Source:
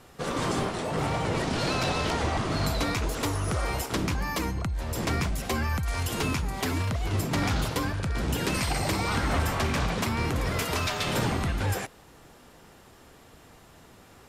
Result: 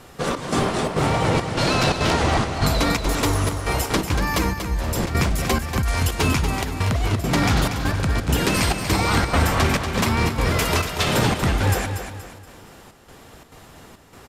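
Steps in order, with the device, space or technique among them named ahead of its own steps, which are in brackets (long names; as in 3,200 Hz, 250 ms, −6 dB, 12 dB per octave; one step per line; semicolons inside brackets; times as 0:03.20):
trance gate with a delay (gate pattern "xxxx..xxxx.x" 172 BPM −12 dB; repeating echo 237 ms, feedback 37%, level −8 dB)
level +7.5 dB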